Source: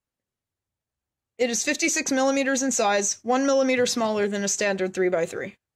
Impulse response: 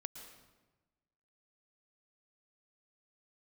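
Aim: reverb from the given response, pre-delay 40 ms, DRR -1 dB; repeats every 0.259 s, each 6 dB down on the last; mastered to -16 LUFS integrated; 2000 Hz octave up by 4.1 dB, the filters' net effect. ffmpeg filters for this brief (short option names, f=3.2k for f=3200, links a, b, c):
-filter_complex "[0:a]equalizer=f=2k:t=o:g=5,aecho=1:1:259|518|777|1036|1295|1554:0.501|0.251|0.125|0.0626|0.0313|0.0157,asplit=2[a][b];[1:a]atrim=start_sample=2205,adelay=40[c];[b][c]afir=irnorm=-1:irlink=0,volume=4dB[d];[a][d]amix=inputs=2:normalize=0,volume=1.5dB"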